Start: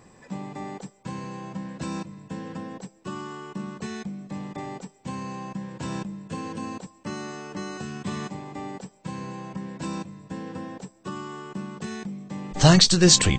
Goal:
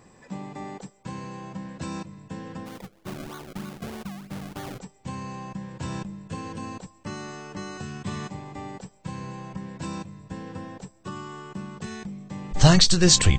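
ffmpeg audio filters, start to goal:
-filter_complex "[0:a]asubboost=boost=3.5:cutoff=110,asplit=3[s0][s1][s2];[s0]afade=t=out:st=2.65:d=0.02[s3];[s1]acrusher=samples=33:mix=1:aa=0.000001:lfo=1:lforange=33:lforate=3.2,afade=t=in:st=2.65:d=0.02,afade=t=out:st=4.78:d=0.02[s4];[s2]afade=t=in:st=4.78:d=0.02[s5];[s3][s4][s5]amix=inputs=3:normalize=0,volume=0.891"

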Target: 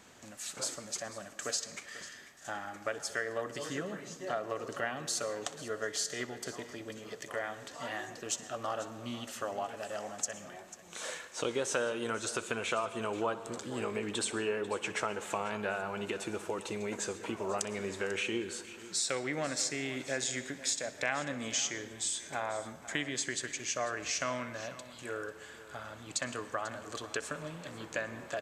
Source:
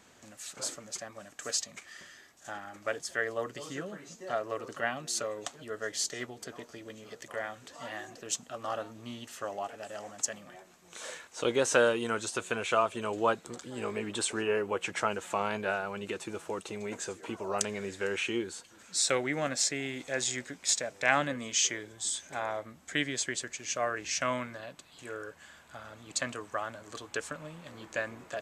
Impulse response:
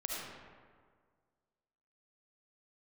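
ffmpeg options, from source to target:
-filter_complex "[0:a]acompressor=threshold=0.02:ratio=3,aecho=1:1:493:0.158,asplit=2[s0][s1];[1:a]atrim=start_sample=2205,asetrate=61740,aresample=44100,adelay=62[s2];[s1][s2]afir=irnorm=-1:irlink=0,volume=0.237[s3];[s0][s3]amix=inputs=2:normalize=0,volume=1.26"

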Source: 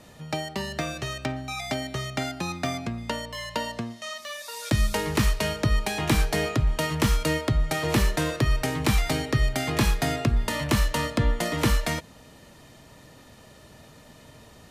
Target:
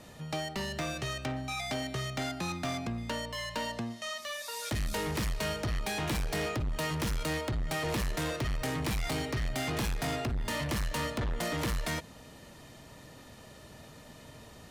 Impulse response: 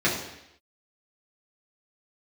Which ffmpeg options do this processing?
-af "asoftclip=type=tanh:threshold=0.0398,volume=0.891"

